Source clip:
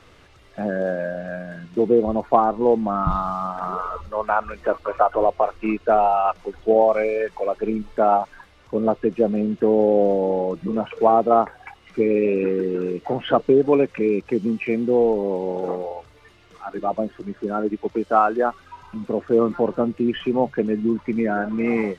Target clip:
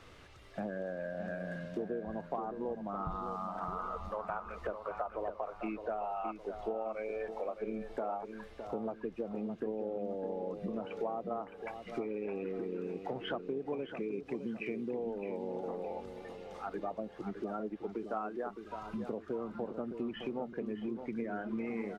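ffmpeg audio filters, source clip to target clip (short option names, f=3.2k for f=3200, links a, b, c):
-filter_complex "[0:a]acompressor=threshold=-31dB:ratio=6,asplit=2[a][b];[b]adelay=613,lowpass=f=2.4k:p=1,volume=-8dB,asplit=2[c][d];[d]adelay=613,lowpass=f=2.4k:p=1,volume=0.41,asplit=2[e][f];[f]adelay=613,lowpass=f=2.4k:p=1,volume=0.41,asplit=2[g][h];[h]adelay=613,lowpass=f=2.4k:p=1,volume=0.41,asplit=2[i][j];[j]adelay=613,lowpass=f=2.4k:p=1,volume=0.41[k];[c][e][g][i][k]amix=inputs=5:normalize=0[l];[a][l]amix=inputs=2:normalize=0,volume=-5dB"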